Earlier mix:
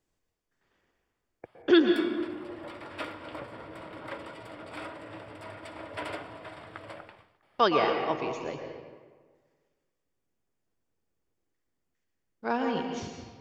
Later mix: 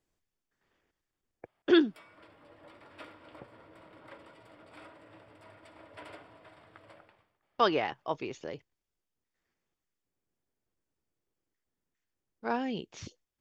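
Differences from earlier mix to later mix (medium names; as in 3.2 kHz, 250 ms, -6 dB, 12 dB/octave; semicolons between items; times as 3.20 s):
background -11.5 dB; reverb: off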